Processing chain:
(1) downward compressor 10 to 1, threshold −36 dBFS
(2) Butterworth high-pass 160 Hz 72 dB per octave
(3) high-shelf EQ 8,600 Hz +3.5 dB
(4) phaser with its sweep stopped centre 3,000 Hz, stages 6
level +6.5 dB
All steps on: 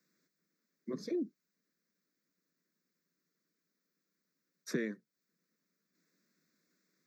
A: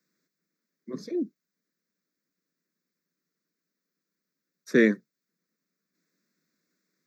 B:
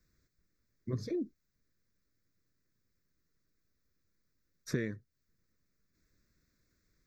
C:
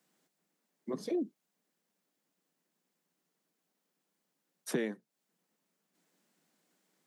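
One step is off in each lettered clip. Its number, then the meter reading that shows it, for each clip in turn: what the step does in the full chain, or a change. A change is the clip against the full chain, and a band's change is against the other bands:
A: 1, average gain reduction 7.5 dB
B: 2, 125 Hz band +11.5 dB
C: 4, 1 kHz band +7.0 dB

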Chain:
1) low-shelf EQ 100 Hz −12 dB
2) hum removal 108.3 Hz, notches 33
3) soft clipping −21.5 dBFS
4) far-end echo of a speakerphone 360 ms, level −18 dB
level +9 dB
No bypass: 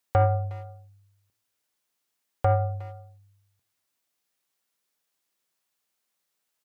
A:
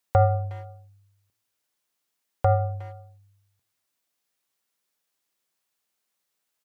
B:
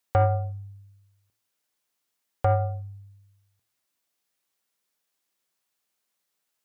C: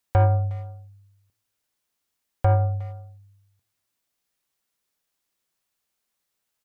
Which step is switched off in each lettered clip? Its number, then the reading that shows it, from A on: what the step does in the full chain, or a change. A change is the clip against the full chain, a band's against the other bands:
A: 3, distortion level −18 dB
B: 4, echo-to-direct ratio −23.0 dB to none audible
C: 1, 125 Hz band +4.5 dB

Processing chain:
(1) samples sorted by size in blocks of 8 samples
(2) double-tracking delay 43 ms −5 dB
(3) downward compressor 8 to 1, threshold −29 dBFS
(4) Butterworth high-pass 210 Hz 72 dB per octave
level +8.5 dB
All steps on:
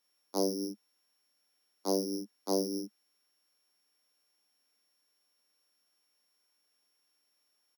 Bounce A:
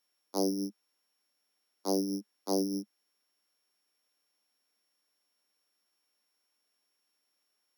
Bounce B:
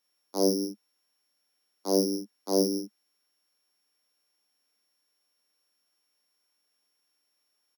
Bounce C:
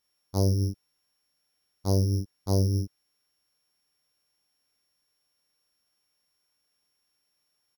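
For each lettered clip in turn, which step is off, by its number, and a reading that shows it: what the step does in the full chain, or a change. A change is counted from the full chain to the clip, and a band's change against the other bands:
2, 250 Hz band +3.0 dB
3, average gain reduction 4.5 dB
4, 250 Hz band +3.0 dB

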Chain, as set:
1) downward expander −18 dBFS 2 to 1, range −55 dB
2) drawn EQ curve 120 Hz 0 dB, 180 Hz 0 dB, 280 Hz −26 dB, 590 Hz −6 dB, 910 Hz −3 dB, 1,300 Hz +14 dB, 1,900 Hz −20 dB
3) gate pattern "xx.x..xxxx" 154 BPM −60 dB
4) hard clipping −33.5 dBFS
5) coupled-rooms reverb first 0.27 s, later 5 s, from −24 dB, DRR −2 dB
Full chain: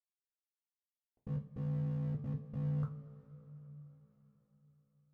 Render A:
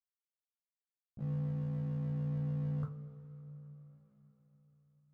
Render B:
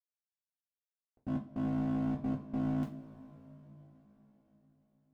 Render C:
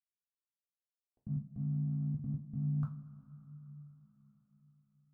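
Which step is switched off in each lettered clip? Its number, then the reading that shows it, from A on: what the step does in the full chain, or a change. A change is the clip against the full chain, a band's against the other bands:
3, change in crest factor −2.5 dB
2, 125 Hz band −12.5 dB
4, distortion level −15 dB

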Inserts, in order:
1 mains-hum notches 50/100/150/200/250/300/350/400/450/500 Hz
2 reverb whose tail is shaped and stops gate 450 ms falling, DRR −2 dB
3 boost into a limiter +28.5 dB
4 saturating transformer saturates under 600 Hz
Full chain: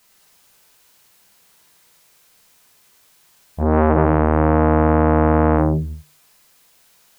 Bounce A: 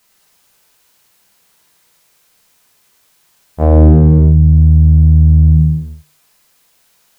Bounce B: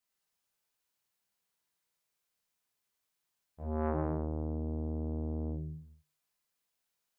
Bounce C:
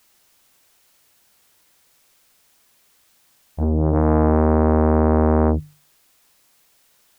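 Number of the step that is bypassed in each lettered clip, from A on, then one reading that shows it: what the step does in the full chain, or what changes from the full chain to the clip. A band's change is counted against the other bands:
4, change in crest factor −8.0 dB
3, change in crest factor +3.0 dB
2, change in momentary loudness spread −1 LU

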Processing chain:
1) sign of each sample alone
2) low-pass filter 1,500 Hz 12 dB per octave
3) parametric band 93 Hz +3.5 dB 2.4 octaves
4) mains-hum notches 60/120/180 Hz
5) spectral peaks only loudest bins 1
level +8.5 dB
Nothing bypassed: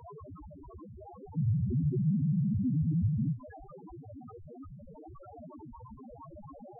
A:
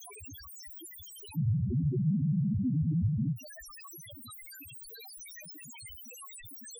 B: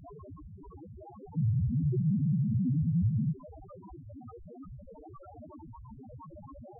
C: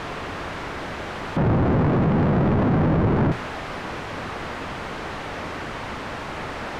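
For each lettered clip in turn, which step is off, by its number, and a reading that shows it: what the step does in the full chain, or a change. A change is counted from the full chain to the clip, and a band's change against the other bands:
2, change in momentary loudness spread −4 LU
4, 125 Hz band +1.5 dB
5, 125 Hz band −14.0 dB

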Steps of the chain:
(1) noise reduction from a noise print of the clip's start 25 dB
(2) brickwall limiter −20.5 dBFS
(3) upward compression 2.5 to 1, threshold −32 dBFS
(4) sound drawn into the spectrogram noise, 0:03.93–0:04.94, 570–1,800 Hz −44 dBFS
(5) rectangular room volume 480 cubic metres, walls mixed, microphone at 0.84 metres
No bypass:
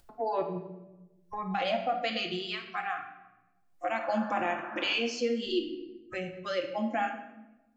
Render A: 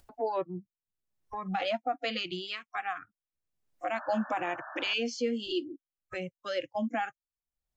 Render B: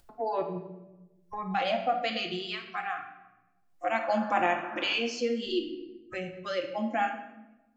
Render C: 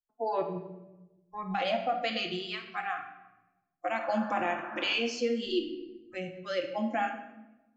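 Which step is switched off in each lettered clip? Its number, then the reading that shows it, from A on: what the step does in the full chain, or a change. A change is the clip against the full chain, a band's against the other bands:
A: 5, echo-to-direct ratio −3.5 dB to none audible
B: 2, change in crest factor +3.0 dB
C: 3, change in momentary loudness spread +1 LU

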